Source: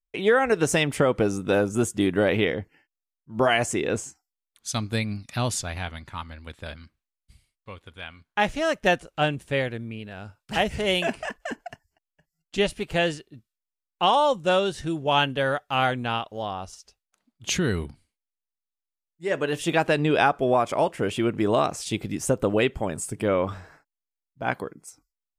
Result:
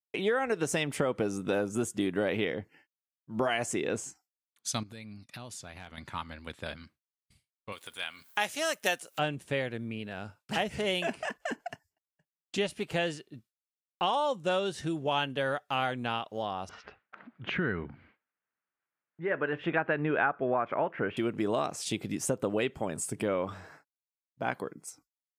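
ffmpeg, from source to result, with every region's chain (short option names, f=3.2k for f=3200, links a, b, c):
-filter_complex "[0:a]asettb=1/sr,asplit=3[a][b][c];[a]atrim=end=4.834[d];[b]atrim=start=4.83:end=5.98,asetpts=PTS-STARTPTS,afade=t=in:d=0.004:c=qsin,afade=t=out:st=1.146:d=0.004:c=qsin,agate=range=-15dB:threshold=-44dB:ratio=16:release=100:detection=peak,acompressor=threshold=-41dB:ratio=6:attack=3.2:release=140:knee=1:detection=peak,asoftclip=type=hard:threshold=-35dB[e];[c]atrim=start=5.976[f];[d][e]acrossfade=d=0.004:c1=hsin:c2=qsin[g];[g][f]acrossfade=d=0.004:c1=qsin:c2=hsin,asettb=1/sr,asplit=3[h][i][j];[h]atrim=end=7.724[k];[i]atrim=start=7.72:end=9.19,asetpts=PTS-STARTPTS,afade=t=in:d=0.004:c=qsin,afade=t=out:st=1.466:d=0.004:c=qsin,aemphasis=mode=production:type=riaa,acompressor=mode=upward:threshold=-41dB:ratio=2.5:attack=3.2:release=140:knee=2.83:detection=peak[l];[j]atrim=start=9.186[m];[k][l]acrossfade=d=0.004:c1=hsin:c2=qsin[n];[n][m]acrossfade=d=0.004:c1=qsin:c2=hsin,asettb=1/sr,asplit=3[o][p][q];[o]atrim=end=16.694[r];[p]atrim=start=16.69:end=21.17,asetpts=PTS-STARTPTS,afade=t=in:d=0.004:c=qsin,afade=t=out:st=4.476:d=0.004:c=qsin,lowpass=f=2.4k:w=0.5412,lowpass=f=2.4k:w=1.3066,acompressor=mode=upward:threshold=-33dB:ratio=2.5:attack=3.2:release=140:knee=2.83:detection=peak,equalizer=f=1.5k:w=2:g=7.5[s];[q]atrim=start=21.166[t];[r][s]acrossfade=d=0.004:c1=hsin:c2=qsin[u];[u][t]acrossfade=d=0.004:c1=qsin:c2=hsin,highpass=120,agate=range=-33dB:threshold=-55dB:ratio=3:detection=peak,acompressor=threshold=-32dB:ratio=2"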